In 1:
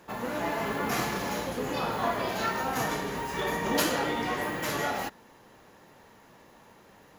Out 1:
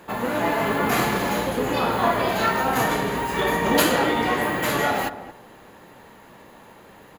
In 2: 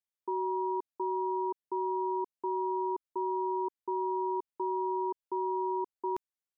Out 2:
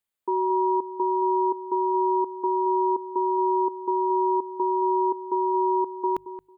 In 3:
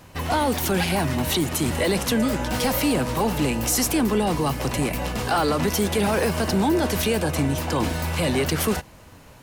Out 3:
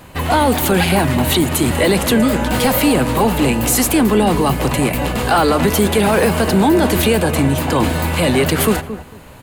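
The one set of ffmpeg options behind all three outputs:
-filter_complex "[0:a]equalizer=f=5.6k:t=o:w=0.36:g=-9.5,bandreject=f=50:t=h:w=6,bandreject=f=100:t=h:w=6,bandreject=f=150:t=h:w=6,asplit=2[a][b];[b]adelay=224,lowpass=f=950:p=1,volume=-11dB,asplit=2[c][d];[d]adelay=224,lowpass=f=950:p=1,volume=0.19,asplit=2[e][f];[f]adelay=224,lowpass=f=950:p=1,volume=0.19[g];[c][e][g]amix=inputs=3:normalize=0[h];[a][h]amix=inputs=2:normalize=0,volume=8dB"

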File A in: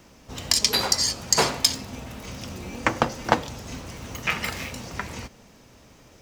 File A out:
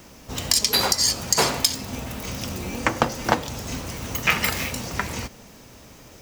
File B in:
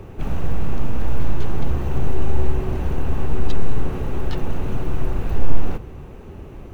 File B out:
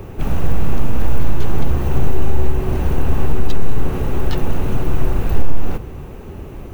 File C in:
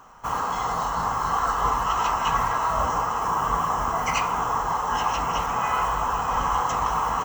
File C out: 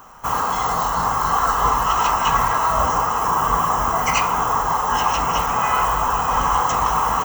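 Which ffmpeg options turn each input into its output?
-af "highshelf=f=11k:g=11.5,alimiter=limit=-7dB:level=0:latency=1:release=265,volume=5dB"

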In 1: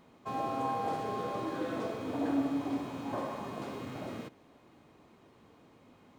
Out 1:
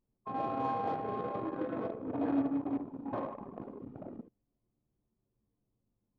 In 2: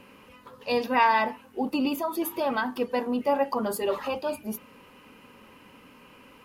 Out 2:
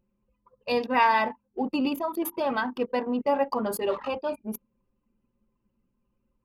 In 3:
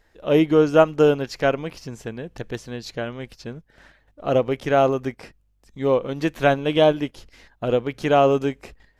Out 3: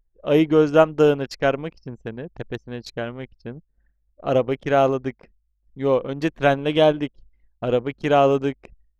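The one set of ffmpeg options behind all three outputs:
-af "anlmdn=3.98"

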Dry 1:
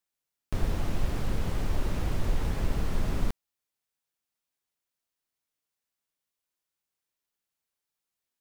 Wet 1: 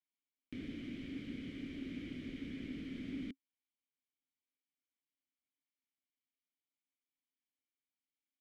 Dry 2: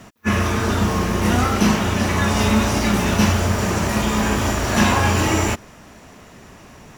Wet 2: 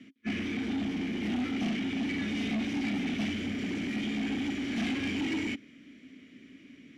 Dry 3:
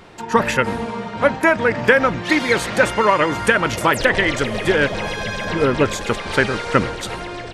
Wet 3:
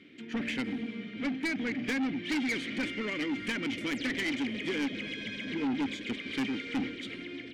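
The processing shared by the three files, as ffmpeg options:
-filter_complex "[0:a]asplit=3[a][b][c];[a]bandpass=f=270:t=q:w=8,volume=0dB[d];[b]bandpass=f=2.29k:t=q:w=8,volume=-6dB[e];[c]bandpass=f=3.01k:t=q:w=8,volume=-9dB[f];[d][e][f]amix=inputs=3:normalize=0,aeval=exprs='0.211*(cos(1*acos(clip(val(0)/0.211,-1,1)))-cos(1*PI/2))+0.0237*(cos(3*acos(clip(val(0)/0.211,-1,1)))-cos(3*PI/2))+0.0668*(cos(5*acos(clip(val(0)/0.211,-1,1)))-cos(5*PI/2))':c=same,asoftclip=type=tanh:threshold=-22.5dB,volume=-4dB"

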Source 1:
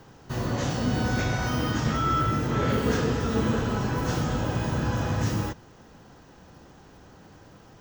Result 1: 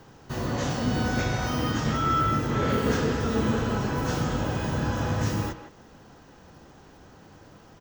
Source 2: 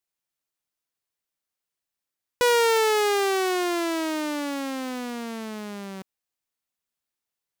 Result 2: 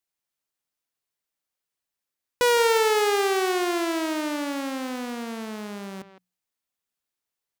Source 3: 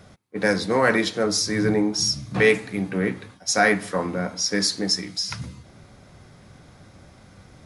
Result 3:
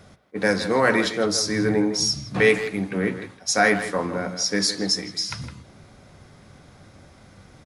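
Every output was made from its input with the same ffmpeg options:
-filter_complex "[0:a]bandreject=f=60:t=h:w=6,bandreject=f=120:t=h:w=6,bandreject=f=180:t=h:w=6,asplit=2[a][b];[b]adelay=160,highpass=300,lowpass=3.4k,asoftclip=type=hard:threshold=-13.5dB,volume=-10dB[c];[a][c]amix=inputs=2:normalize=0"

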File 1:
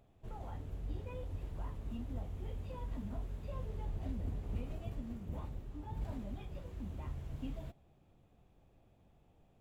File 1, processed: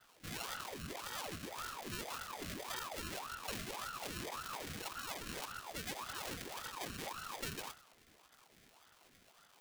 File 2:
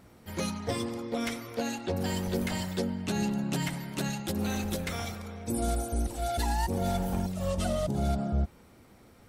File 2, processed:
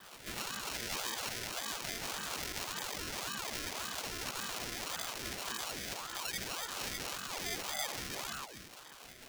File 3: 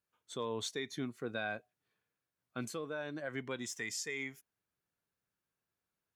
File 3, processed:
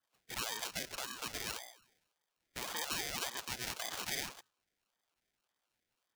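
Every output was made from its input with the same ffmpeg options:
-af "bandreject=f=62.78:t=h:w=4,bandreject=f=125.56:t=h:w=4,bandreject=f=188.34:t=h:w=4,bandreject=f=251.12:t=h:w=4,bandreject=f=313.9:t=h:w=4,bandreject=f=376.68:t=h:w=4,bandreject=f=439.46:t=h:w=4,bandreject=f=502.24:t=h:w=4,bandreject=f=565.02:t=h:w=4,bandreject=f=627.8:t=h:w=4,bandreject=f=690.58:t=h:w=4,bandreject=f=753.36:t=h:w=4,bandreject=f=816.14:t=h:w=4,acrusher=samples=32:mix=1:aa=0.000001,adynamicequalizer=threshold=0.00112:dfrequency=5500:dqfactor=3.1:tfrequency=5500:tqfactor=3.1:attack=5:release=100:ratio=0.375:range=2.5:mode=boostabove:tftype=bell,acompressor=threshold=-33dB:ratio=6,alimiter=level_in=12.5dB:limit=-24dB:level=0:latency=1:release=171,volume=-12.5dB,asuperstop=centerf=860:order=20:qfactor=1.7,tiltshelf=f=810:g=-9.5,aeval=exprs='val(0)*sin(2*PI*760*n/s+760*0.85/1.8*sin(2*PI*1.8*n/s))':c=same,volume=8.5dB"

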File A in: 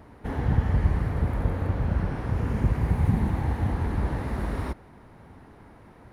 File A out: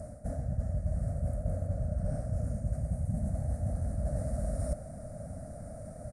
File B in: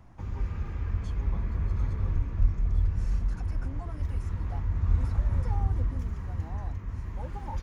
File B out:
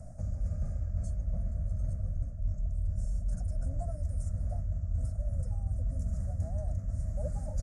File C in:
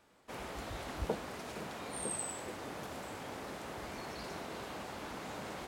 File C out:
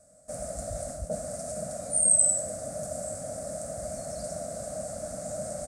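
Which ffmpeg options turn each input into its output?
-af "areverse,acompressor=threshold=-37dB:ratio=10,areverse,firequalizer=gain_entry='entry(170,0);entry(260,-6);entry(380,-23);entry(610,11);entry(930,-28);entry(1300,-12);entry(3000,-28);entry(4800,-6);entry(8500,15);entry(14000,-14)':delay=0.05:min_phase=1,volume=8.5dB"

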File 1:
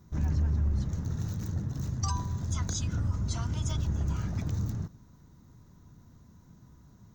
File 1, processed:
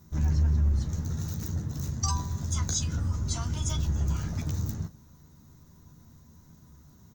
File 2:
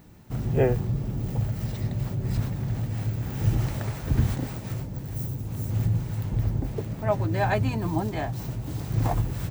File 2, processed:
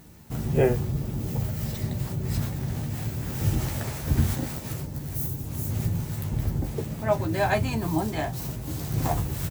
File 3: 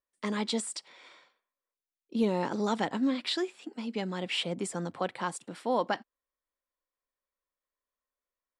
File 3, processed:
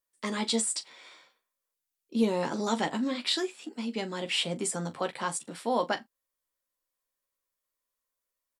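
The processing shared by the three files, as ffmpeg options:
-af "aemphasis=mode=production:type=cd,aecho=1:1:13|41:0.473|0.178"

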